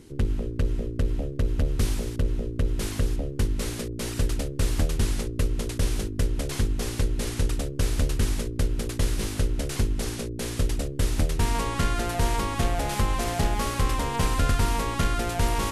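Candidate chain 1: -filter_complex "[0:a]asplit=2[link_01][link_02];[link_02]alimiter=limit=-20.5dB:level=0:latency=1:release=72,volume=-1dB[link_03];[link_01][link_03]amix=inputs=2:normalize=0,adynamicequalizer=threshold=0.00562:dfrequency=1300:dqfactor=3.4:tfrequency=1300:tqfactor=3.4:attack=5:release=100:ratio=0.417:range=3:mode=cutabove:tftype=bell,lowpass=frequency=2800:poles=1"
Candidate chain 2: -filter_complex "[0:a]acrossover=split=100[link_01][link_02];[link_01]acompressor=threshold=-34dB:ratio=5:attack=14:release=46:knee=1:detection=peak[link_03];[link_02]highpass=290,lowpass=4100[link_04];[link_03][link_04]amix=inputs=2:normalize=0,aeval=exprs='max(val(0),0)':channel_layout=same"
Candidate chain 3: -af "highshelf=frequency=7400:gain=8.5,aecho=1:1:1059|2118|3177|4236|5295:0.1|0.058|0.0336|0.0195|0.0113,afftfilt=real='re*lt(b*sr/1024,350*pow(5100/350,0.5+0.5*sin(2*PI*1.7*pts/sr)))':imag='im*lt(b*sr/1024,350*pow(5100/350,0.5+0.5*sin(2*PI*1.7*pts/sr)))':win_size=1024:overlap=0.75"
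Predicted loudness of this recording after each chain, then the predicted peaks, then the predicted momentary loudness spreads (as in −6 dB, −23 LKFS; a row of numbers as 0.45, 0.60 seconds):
−24.5, −37.0, −28.5 LKFS; −10.0, −16.5, −12.5 dBFS; 2, 6, 3 LU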